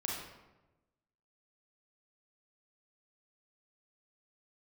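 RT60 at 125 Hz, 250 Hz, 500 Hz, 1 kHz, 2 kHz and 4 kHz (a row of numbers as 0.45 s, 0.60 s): 1.4 s, 1.3 s, 1.2 s, 1.0 s, 0.85 s, 0.65 s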